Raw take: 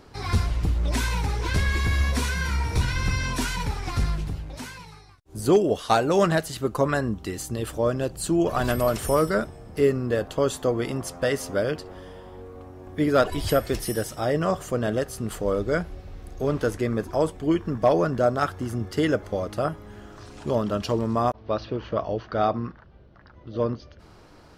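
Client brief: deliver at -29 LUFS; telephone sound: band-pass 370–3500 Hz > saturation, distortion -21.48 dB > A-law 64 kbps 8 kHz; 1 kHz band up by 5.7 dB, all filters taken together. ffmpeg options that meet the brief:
-af "highpass=370,lowpass=3500,equalizer=f=1000:t=o:g=8,asoftclip=threshold=0.422,volume=0.668" -ar 8000 -c:a pcm_alaw

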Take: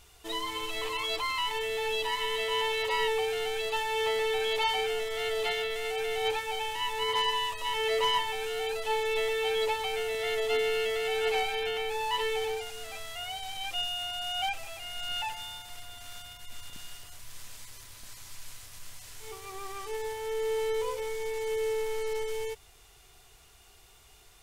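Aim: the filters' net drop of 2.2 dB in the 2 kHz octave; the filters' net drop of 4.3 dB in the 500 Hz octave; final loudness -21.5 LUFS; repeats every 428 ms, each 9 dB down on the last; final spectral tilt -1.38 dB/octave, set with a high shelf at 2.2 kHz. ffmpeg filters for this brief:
-af "equalizer=f=500:t=o:g=-5,equalizer=f=2000:t=o:g=-6,highshelf=f=2200:g=5.5,aecho=1:1:428|856|1284|1712:0.355|0.124|0.0435|0.0152,volume=3.16"

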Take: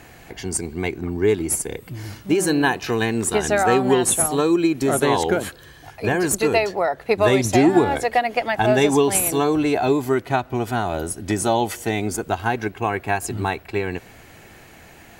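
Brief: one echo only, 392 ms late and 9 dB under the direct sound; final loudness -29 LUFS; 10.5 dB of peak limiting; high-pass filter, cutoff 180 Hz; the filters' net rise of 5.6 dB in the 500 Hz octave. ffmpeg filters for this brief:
-af "highpass=180,equalizer=f=500:t=o:g=7.5,alimiter=limit=0.282:level=0:latency=1,aecho=1:1:392:0.355,volume=0.376"

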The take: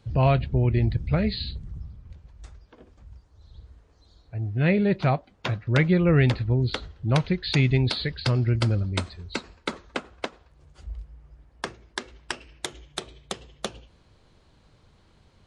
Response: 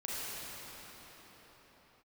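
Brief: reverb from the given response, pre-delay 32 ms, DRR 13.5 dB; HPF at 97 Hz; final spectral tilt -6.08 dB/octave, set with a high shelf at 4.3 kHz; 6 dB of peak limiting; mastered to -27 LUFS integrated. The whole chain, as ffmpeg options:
-filter_complex "[0:a]highpass=97,highshelf=f=4300:g=-4.5,alimiter=limit=0.178:level=0:latency=1,asplit=2[s0][s1];[1:a]atrim=start_sample=2205,adelay=32[s2];[s1][s2]afir=irnorm=-1:irlink=0,volume=0.126[s3];[s0][s3]amix=inputs=2:normalize=0,volume=1.06"

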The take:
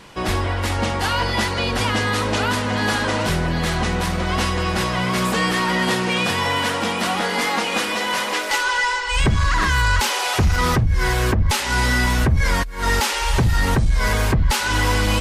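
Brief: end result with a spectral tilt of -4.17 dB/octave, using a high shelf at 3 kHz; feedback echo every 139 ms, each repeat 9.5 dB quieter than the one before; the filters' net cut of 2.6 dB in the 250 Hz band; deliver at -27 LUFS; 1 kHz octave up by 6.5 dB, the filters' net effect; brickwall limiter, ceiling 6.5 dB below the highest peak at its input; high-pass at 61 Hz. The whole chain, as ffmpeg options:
-af "highpass=61,equalizer=f=250:t=o:g=-4,equalizer=f=1000:t=o:g=8,highshelf=f=3000:g=-4,alimiter=limit=0.299:level=0:latency=1,aecho=1:1:139|278|417|556:0.335|0.111|0.0365|0.012,volume=0.398"

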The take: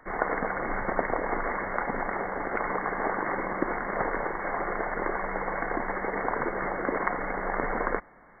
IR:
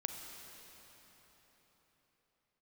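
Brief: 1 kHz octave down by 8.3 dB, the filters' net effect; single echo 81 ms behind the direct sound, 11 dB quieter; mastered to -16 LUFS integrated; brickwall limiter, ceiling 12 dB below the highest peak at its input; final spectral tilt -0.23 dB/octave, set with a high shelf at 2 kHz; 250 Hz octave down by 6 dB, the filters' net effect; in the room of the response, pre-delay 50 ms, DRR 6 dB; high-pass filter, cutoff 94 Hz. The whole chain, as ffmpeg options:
-filter_complex "[0:a]highpass=94,equalizer=f=250:t=o:g=-7.5,equalizer=f=1000:t=o:g=-8.5,highshelf=f=2000:g=-8.5,alimiter=level_in=1.19:limit=0.0631:level=0:latency=1,volume=0.841,aecho=1:1:81:0.282,asplit=2[s0][s1];[1:a]atrim=start_sample=2205,adelay=50[s2];[s1][s2]afir=irnorm=-1:irlink=0,volume=0.501[s3];[s0][s3]amix=inputs=2:normalize=0,volume=10"

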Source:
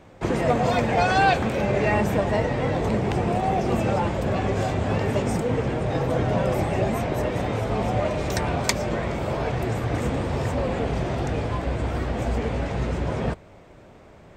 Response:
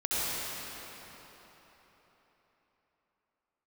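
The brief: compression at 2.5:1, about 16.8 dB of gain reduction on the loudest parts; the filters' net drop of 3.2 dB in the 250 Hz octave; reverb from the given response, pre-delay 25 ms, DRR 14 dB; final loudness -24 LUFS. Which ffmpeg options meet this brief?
-filter_complex "[0:a]equalizer=f=250:t=o:g=-4.5,acompressor=threshold=0.00794:ratio=2.5,asplit=2[s0][s1];[1:a]atrim=start_sample=2205,adelay=25[s2];[s1][s2]afir=irnorm=-1:irlink=0,volume=0.0596[s3];[s0][s3]amix=inputs=2:normalize=0,volume=5.31"

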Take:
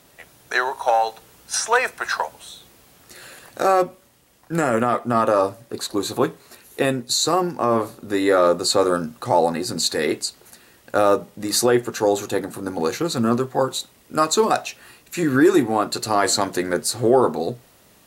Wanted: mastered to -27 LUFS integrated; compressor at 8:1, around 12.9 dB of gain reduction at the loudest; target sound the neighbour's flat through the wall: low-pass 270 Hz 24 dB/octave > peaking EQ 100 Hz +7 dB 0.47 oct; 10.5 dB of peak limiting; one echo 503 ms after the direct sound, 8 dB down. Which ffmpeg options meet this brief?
-af "acompressor=threshold=0.0562:ratio=8,alimiter=limit=0.0794:level=0:latency=1,lowpass=f=270:w=0.5412,lowpass=f=270:w=1.3066,equalizer=f=100:t=o:w=0.47:g=7,aecho=1:1:503:0.398,volume=4.47"

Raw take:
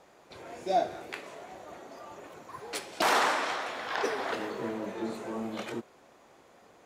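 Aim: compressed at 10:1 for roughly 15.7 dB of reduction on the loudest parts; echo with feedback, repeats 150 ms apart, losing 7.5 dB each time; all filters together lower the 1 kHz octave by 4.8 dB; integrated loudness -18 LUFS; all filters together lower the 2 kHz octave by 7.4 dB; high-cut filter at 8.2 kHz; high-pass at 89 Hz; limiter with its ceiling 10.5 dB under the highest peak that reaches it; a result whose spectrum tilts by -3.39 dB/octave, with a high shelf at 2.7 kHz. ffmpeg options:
-af "highpass=89,lowpass=8200,equalizer=f=1000:t=o:g=-4.5,equalizer=f=2000:t=o:g=-5,highshelf=f=2700:g=-7.5,acompressor=threshold=0.00794:ratio=10,alimiter=level_in=5.01:limit=0.0631:level=0:latency=1,volume=0.2,aecho=1:1:150|300|450|600|750:0.422|0.177|0.0744|0.0312|0.0131,volume=29.9"

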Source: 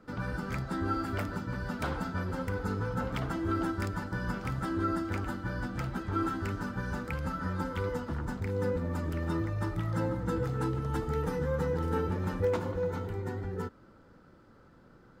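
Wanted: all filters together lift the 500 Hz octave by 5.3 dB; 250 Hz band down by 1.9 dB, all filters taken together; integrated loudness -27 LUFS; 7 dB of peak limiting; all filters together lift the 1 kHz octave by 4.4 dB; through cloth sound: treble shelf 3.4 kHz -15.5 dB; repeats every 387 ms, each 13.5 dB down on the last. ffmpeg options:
-af "equalizer=f=250:t=o:g=-5.5,equalizer=f=500:t=o:g=6,equalizer=f=1000:t=o:g=7,alimiter=limit=0.0891:level=0:latency=1,highshelf=f=3400:g=-15.5,aecho=1:1:387|774:0.211|0.0444,volume=1.88"

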